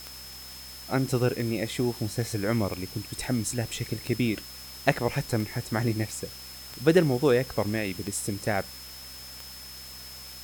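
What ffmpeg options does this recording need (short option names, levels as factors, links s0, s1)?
-af "adeclick=t=4,bandreject=f=65:t=h:w=4,bandreject=f=130:t=h:w=4,bandreject=f=195:t=h:w=4,bandreject=f=260:t=h:w=4,bandreject=f=5200:w=30,afftdn=nr=30:nf=-43"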